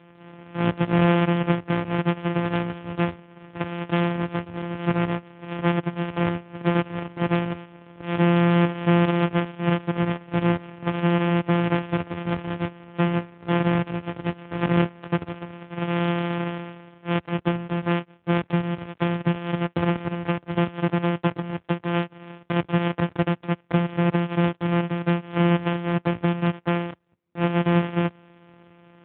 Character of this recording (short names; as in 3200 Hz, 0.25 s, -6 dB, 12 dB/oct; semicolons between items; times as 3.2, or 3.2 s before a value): a buzz of ramps at a fixed pitch in blocks of 256 samples; AMR-NB